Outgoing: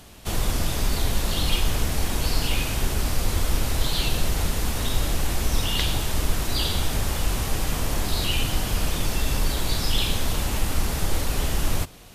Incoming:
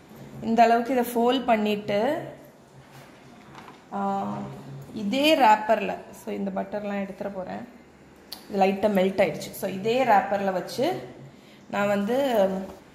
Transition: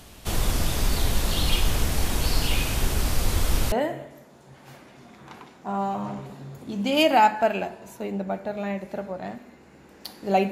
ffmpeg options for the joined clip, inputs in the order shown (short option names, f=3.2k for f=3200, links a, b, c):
-filter_complex "[0:a]apad=whole_dur=10.51,atrim=end=10.51,atrim=end=3.722[a];[1:a]atrim=start=1.988:end=8.78[b];[a][b]acrossfade=d=0.004:c1=hsin:c2=hsin"